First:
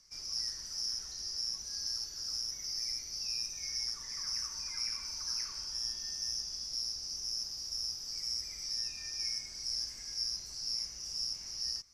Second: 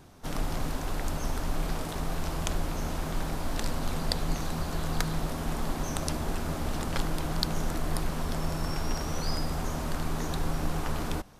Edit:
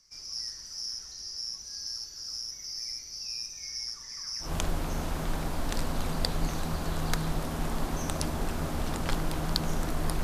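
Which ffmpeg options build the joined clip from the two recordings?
-filter_complex "[0:a]apad=whole_dur=10.23,atrim=end=10.23,atrim=end=4.53,asetpts=PTS-STARTPTS[a];[1:a]atrim=start=2.26:end=8.1,asetpts=PTS-STARTPTS[b];[a][b]acrossfade=d=0.14:c1=tri:c2=tri"

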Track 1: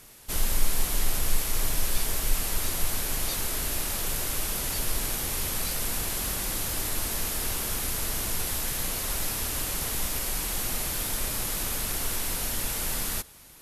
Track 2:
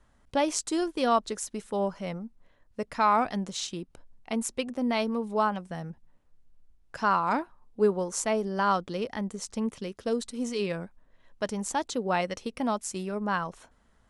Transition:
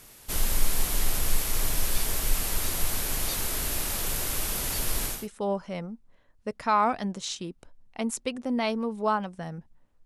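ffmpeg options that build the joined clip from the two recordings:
-filter_complex "[0:a]apad=whole_dur=10.05,atrim=end=10.05,atrim=end=5.28,asetpts=PTS-STARTPTS[a];[1:a]atrim=start=1.36:end=6.37,asetpts=PTS-STARTPTS[b];[a][b]acrossfade=d=0.24:c1=tri:c2=tri"

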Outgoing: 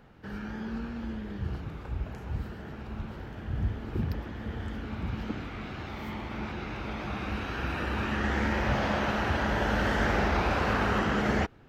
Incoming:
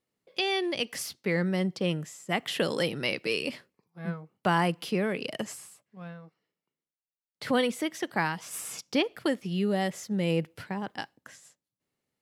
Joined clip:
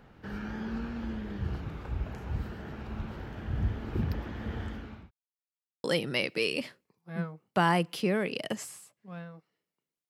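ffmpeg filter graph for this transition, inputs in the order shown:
-filter_complex "[0:a]apad=whole_dur=10.09,atrim=end=10.09,asplit=2[a][b];[a]atrim=end=5.11,asetpts=PTS-STARTPTS,afade=t=out:st=4.59:d=0.52[c];[b]atrim=start=5.11:end=5.84,asetpts=PTS-STARTPTS,volume=0[d];[1:a]atrim=start=2.73:end=6.98,asetpts=PTS-STARTPTS,afade=t=in:d=0.004:c=hsin[e];[c][d][e]concat=n=3:v=0:a=1"

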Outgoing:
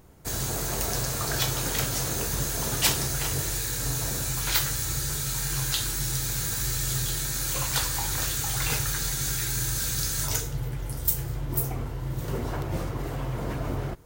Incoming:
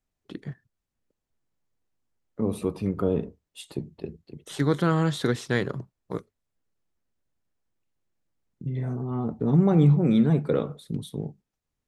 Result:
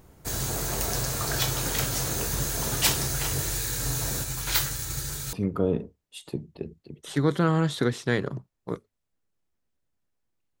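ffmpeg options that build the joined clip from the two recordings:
-filter_complex "[0:a]asplit=3[a][b][c];[a]afade=t=out:st=4.22:d=0.02[d];[b]agate=range=-33dB:threshold=-26dB:ratio=3:release=100:detection=peak,afade=t=in:st=4.22:d=0.02,afade=t=out:st=5.33:d=0.02[e];[c]afade=t=in:st=5.33:d=0.02[f];[d][e][f]amix=inputs=3:normalize=0,apad=whole_dur=10.6,atrim=end=10.6,atrim=end=5.332[g];[1:a]atrim=start=2.758:end=8.03[h];[g][h]acrossfade=d=0.004:c1=hsin:c2=hsin"

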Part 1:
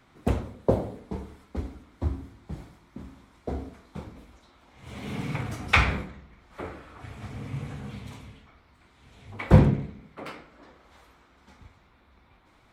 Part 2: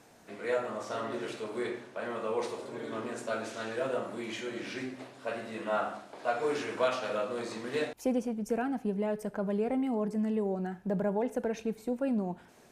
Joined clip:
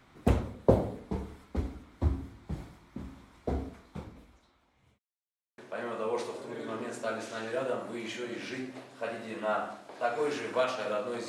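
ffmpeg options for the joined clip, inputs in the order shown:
-filter_complex "[0:a]apad=whole_dur=11.28,atrim=end=11.28,asplit=2[a][b];[a]atrim=end=4.99,asetpts=PTS-STARTPTS,afade=t=out:st=3.56:d=1.43[c];[b]atrim=start=4.99:end=5.58,asetpts=PTS-STARTPTS,volume=0[d];[1:a]atrim=start=1.82:end=7.52,asetpts=PTS-STARTPTS,afade=t=in:d=0.004:c=hsin[e];[c][d][e]concat=n=3:v=0:a=1"

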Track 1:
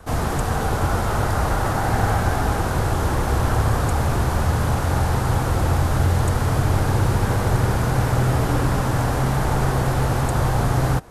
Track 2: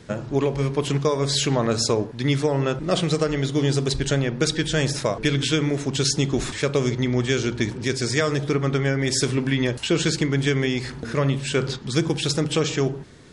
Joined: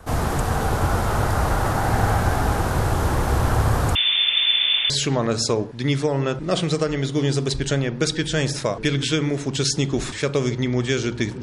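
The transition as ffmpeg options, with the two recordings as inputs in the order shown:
-filter_complex "[0:a]asettb=1/sr,asplit=3[a][b][c];[a]atrim=end=3.954[d];[b]atrim=start=3.95:end=4.9,asetpts=PTS-STARTPTS,afade=t=in:d=0.004:c=qsin,afade=t=out:st=0.946:d=0.004:c=qsin,lowpass=f=3.1k:t=q:w=0.5098,lowpass=f=3.1k:t=q:w=0.6013,lowpass=f=3.1k:t=q:w=0.9,lowpass=f=3.1k:t=q:w=2.563,afreqshift=-3600[e];[c]atrim=start=4.896[f];[d][e]acrossfade=d=0.004:c1=hsin:c2=qsin[g];[g][f]acrossfade=d=0.004:c1=qsin:c2=hsin,apad=whole_dur=11.42,atrim=end=11.42,atrim=end=4.902[h];[1:a]atrim=start=1.298:end=7.82[i];[h][i]acrossfade=d=0.004:c1=hsin:c2=hsin"

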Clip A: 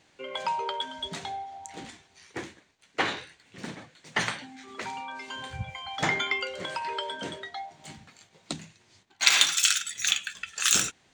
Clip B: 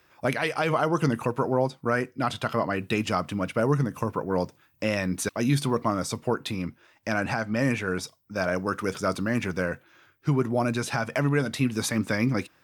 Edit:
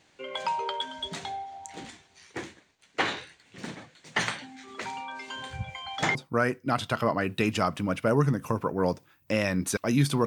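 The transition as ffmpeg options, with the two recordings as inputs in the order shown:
-filter_complex "[0:a]apad=whole_dur=10.26,atrim=end=10.26,atrim=end=6.152[a];[1:a]atrim=start=1.668:end=5.78[b];[a][b]acrossfade=d=0.004:c1=hsin:c2=hsin"

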